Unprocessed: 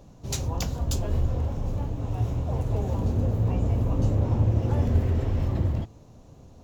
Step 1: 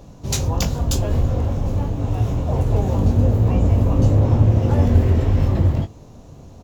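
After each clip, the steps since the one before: doubler 21 ms -8.5 dB; gain +7.5 dB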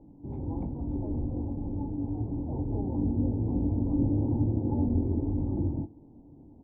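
vocal tract filter u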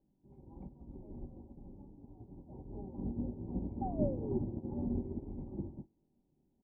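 painted sound fall, 3.81–4.39, 360–810 Hz -34 dBFS; comb 5.2 ms, depth 54%; upward expander 2.5:1, over -37 dBFS; gain -3 dB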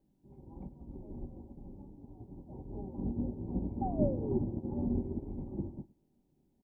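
echo 0.109 s -23 dB; gain +3 dB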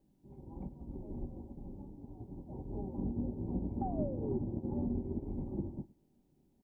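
compressor 4:1, threshold -34 dBFS, peak gain reduction 9.5 dB; gain +2 dB

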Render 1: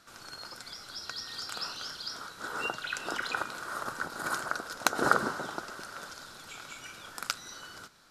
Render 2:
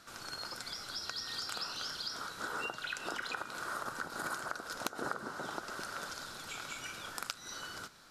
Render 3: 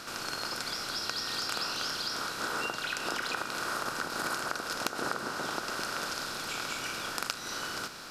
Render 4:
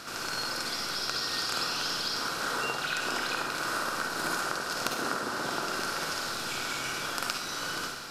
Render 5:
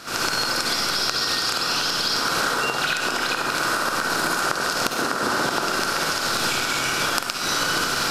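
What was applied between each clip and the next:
compressor 5:1, threshold -38 dBFS, peak gain reduction 19 dB; gain +2 dB
per-bin compression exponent 0.6; gain +2 dB
reverb RT60 0.75 s, pre-delay 45 ms, DRR 1 dB
recorder AGC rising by 68 dB/s; gain +2 dB

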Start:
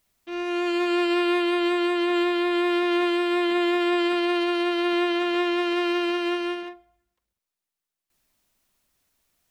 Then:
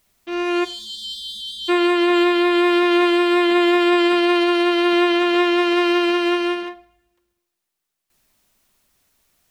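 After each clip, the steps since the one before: spectral delete 0.64–1.69, 230–2900 Hz; two-slope reverb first 0.54 s, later 1.6 s, from -25 dB, DRR 15 dB; gain +7 dB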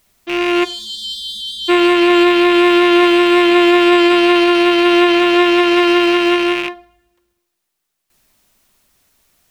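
rattling part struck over -39 dBFS, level -15 dBFS; gain +5.5 dB

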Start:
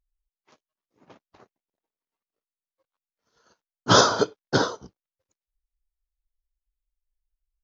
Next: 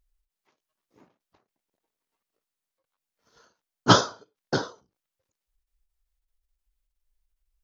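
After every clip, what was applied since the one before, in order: ending taper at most 160 dB/s; gain +7 dB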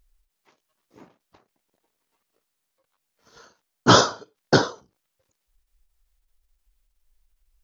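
maximiser +10 dB; gain -1 dB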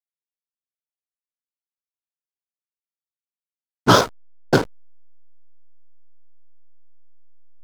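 backlash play -16 dBFS; gain +1.5 dB

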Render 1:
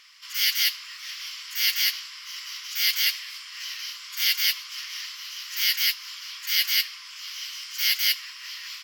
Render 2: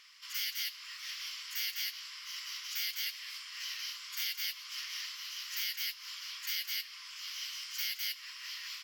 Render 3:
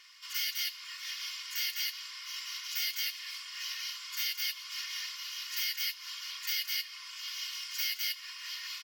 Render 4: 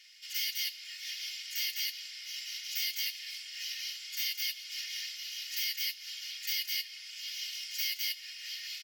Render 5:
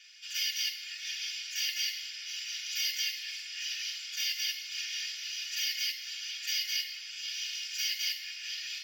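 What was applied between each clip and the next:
compressor 12:1, threshold -27 dBFS, peak gain reduction 10.5 dB; gain -5.5 dB
comb 2.8 ms, depth 82%
inverse Chebyshev high-pass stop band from 940 Hz, stop band 40 dB
reverb RT60 0.85 s, pre-delay 3 ms, DRR 3.5 dB; gain -3.5 dB

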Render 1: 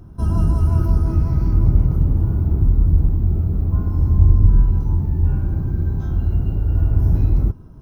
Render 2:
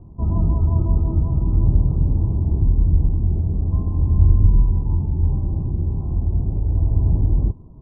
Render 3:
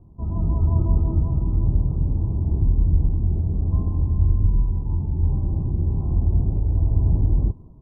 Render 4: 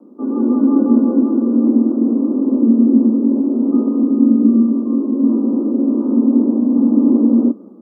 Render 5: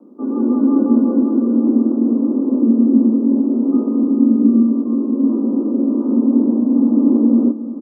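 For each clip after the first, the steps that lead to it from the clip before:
steep low-pass 1100 Hz 72 dB/oct; gain -1.5 dB
AGC; gain -7 dB
frequency shift +190 Hz; gain +5.5 dB
feedback echo 0.352 s, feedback 59%, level -15.5 dB; gain -1 dB

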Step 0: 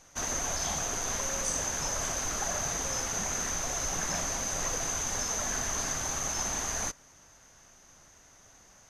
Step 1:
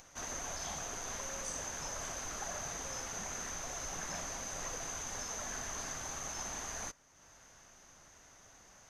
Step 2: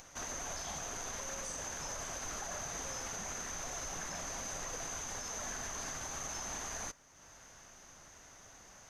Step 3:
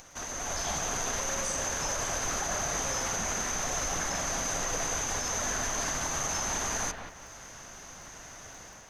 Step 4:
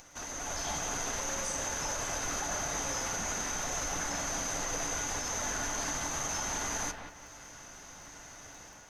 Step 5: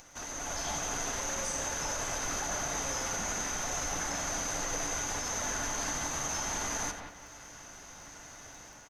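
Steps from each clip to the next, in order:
high shelf 5200 Hz -4.5 dB; upward compressor, threshold -43 dBFS; low shelf 390 Hz -3 dB; gain -7 dB
limiter -35 dBFS, peak gain reduction 6.5 dB; gain +3 dB
AGC gain up to 6.5 dB; crackle 81/s -51 dBFS; on a send: analogue delay 0.18 s, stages 4096, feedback 33%, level -7 dB; on the sum: gain +3 dB
resonator 290 Hz, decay 0.27 s, harmonics odd, mix 70%; gain +6.5 dB
echo 88 ms -12 dB

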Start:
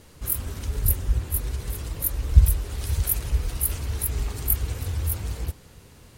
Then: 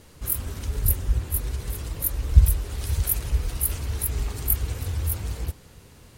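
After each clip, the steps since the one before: nothing audible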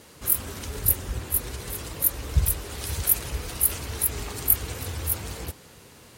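HPF 250 Hz 6 dB/oct; gain +4 dB

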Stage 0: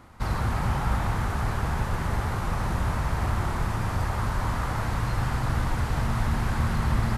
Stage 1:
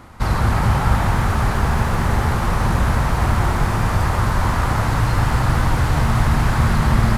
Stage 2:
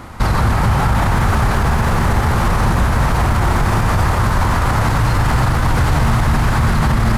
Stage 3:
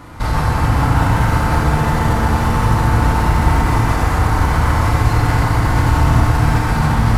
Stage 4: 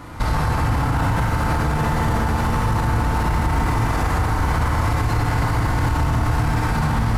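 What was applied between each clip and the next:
lo-fi delay 0.22 s, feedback 80%, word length 9-bit, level -11 dB; gain +8.5 dB
limiter -15 dBFS, peak gain reduction 10.5 dB; gain +8.5 dB
FDN reverb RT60 2.9 s, high-frequency decay 0.55×, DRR -3.5 dB; gain -5.5 dB
limiter -11.5 dBFS, peak gain reduction 10 dB

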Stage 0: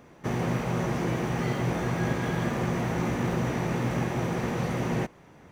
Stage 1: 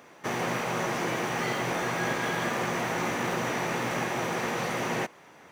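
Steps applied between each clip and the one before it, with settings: HPF 810 Hz 6 dB/oct; gain +6 dB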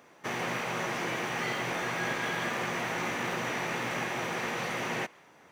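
dynamic EQ 2500 Hz, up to +5 dB, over -47 dBFS, Q 0.73; gain -5 dB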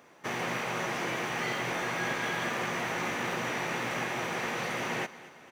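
feedback echo 0.23 s, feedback 58%, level -18 dB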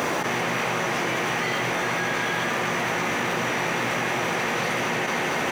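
fast leveller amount 100%; gain +5 dB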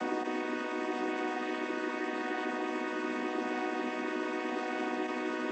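chord vocoder major triad, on B3; gain -8 dB

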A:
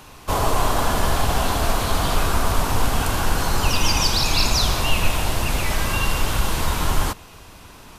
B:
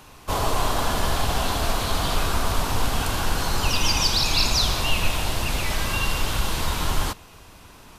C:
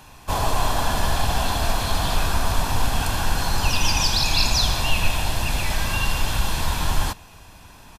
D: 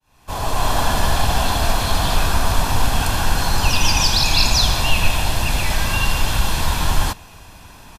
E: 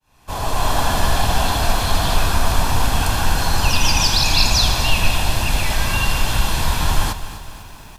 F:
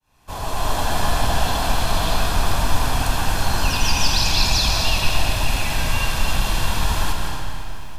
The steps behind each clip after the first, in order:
dynamic EQ 3900 Hz, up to +4 dB, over -36 dBFS, Q 1.1; gain -3.5 dB
comb 1.2 ms, depth 35%
opening faded in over 0.75 s; gain +4 dB
lo-fi delay 0.25 s, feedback 55%, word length 7-bit, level -13 dB
digital reverb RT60 2.5 s, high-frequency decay 0.85×, pre-delay 0.11 s, DRR 1.5 dB; gain -4.5 dB

